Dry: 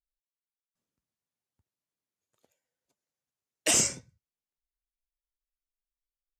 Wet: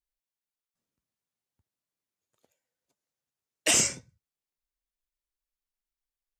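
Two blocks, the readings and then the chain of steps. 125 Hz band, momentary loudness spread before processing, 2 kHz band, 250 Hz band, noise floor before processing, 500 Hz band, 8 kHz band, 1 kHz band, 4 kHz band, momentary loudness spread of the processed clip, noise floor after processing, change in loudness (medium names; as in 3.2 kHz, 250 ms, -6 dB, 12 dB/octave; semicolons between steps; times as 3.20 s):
0.0 dB, 7 LU, +3.5 dB, 0.0 dB, under -85 dBFS, +0.5 dB, +0.5 dB, +1.0 dB, +2.5 dB, 7 LU, under -85 dBFS, +1.0 dB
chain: dynamic bell 2.4 kHz, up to +4 dB, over -38 dBFS, Q 0.85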